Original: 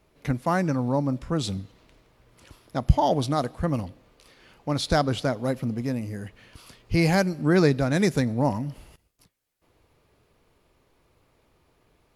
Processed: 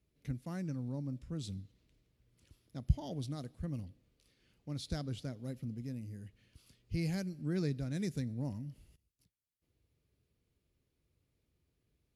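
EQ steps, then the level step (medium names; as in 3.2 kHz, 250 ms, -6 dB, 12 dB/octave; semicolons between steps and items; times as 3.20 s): high-pass 54 Hz; amplifier tone stack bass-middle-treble 10-0-1; bass shelf 160 Hz -7 dB; +5.5 dB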